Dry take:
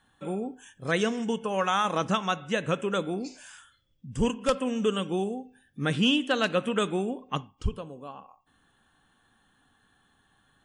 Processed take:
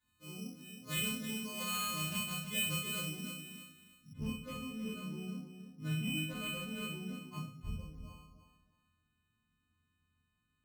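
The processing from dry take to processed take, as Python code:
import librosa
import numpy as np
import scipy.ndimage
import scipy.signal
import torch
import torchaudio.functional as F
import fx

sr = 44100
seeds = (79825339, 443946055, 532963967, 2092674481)

y = fx.freq_snap(x, sr, grid_st=3)
y = fx.comb_fb(y, sr, f0_hz=83.0, decay_s=0.69, harmonics='all', damping=0.0, mix_pct=70)
y = np.clip(10.0 ** (27.0 / 20.0) * y, -1.0, 1.0) / 10.0 ** (27.0 / 20.0)
y = scipy.signal.sosfilt(scipy.signal.butter(2, 46.0, 'highpass', fs=sr, output='sos'), y)
y = fx.band_shelf(y, sr, hz=820.0, db=-15.0, octaves=3.0)
y = y + 0.31 * np.pad(y, (int(1.9 * sr / 1000.0), 0))[:len(y)]
y = fx.echo_feedback(y, sr, ms=313, feedback_pct=21, wet_db=-9)
y = fx.room_shoebox(y, sr, seeds[0], volume_m3=210.0, walls='furnished', distance_m=3.0)
y = np.repeat(scipy.signal.resample_poly(y, 1, 8), 8)[:len(y)]
y = fx.high_shelf(y, sr, hz=2500.0, db=fx.steps((0.0, 9.5), (4.12, -4.5)))
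y = y * librosa.db_to_amplitude(-5.0)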